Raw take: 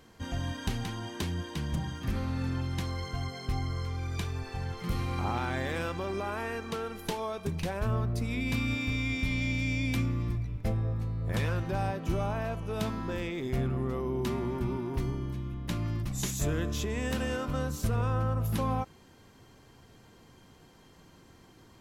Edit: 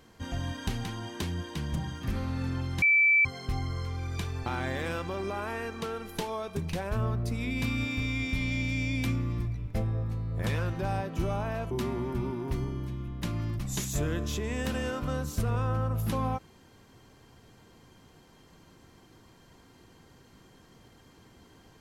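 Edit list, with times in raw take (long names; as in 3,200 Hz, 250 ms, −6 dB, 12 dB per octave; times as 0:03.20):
0:02.82–0:03.25: beep over 2,320 Hz −18.5 dBFS
0:04.46–0:05.36: remove
0:12.61–0:14.17: remove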